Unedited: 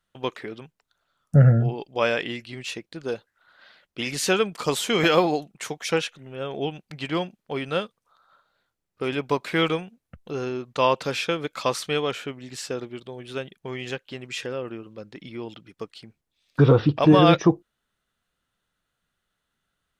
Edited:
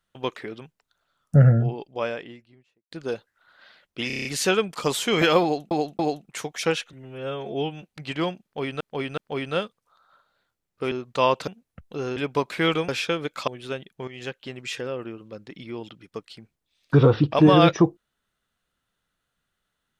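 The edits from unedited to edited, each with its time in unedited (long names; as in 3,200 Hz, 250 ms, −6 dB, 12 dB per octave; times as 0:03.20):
0:01.38–0:02.91: fade out and dull
0:04.07: stutter 0.03 s, 7 plays
0:05.25–0:05.53: repeat, 3 plays
0:06.19–0:06.84: time-stretch 1.5×
0:07.37–0:07.74: repeat, 3 plays
0:09.11–0:09.83: swap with 0:10.52–0:11.08
0:11.67–0:13.13: remove
0:13.73–0:14.00: fade in, from −12 dB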